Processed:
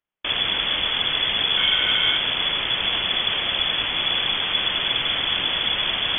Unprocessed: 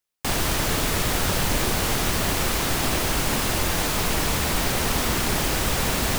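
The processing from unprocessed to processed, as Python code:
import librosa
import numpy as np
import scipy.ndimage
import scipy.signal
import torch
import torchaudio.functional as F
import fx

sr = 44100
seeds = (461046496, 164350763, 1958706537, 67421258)

y = fx.small_body(x, sr, hz=(230.0, 1200.0, 1900.0), ring_ms=45, db=13, at=(1.57, 2.18))
y = fx.freq_invert(y, sr, carrier_hz=3400)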